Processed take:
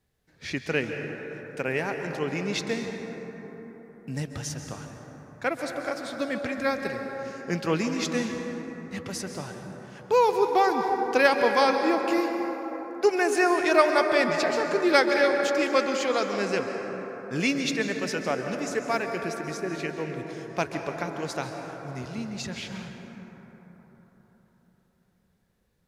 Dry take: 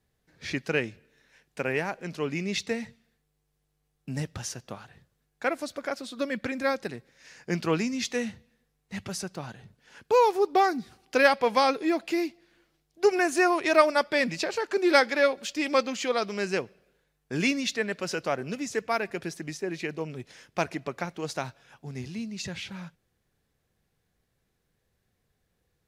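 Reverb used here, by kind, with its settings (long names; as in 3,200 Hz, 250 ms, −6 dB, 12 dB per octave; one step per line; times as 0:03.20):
dense smooth reverb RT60 4.6 s, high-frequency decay 0.3×, pre-delay 120 ms, DRR 4 dB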